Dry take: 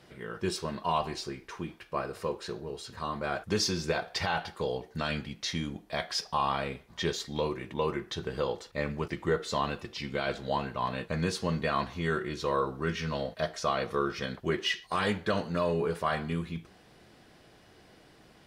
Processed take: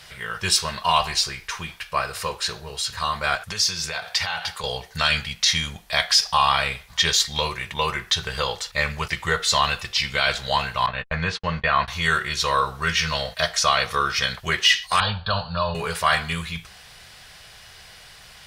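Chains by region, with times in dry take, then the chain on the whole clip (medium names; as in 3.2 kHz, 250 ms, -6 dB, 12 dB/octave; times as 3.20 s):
3.35–4.64 s: high-pass 74 Hz + compression 3:1, threshold -37 dBFS
10.86–11.88 s: gate -36 dBFS, range -53 dB + low-pass 2.3 kHz
15.00–15.75 s: steep low-pass 4.7 kHz 96 dB/octave + bass shelf 170 Hz +6 dB + static phaser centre 850 Hz, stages 4
whole clip: amplifier tone stack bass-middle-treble 10-0-10; loudness maximiser +24.5 dB; trim -5 dB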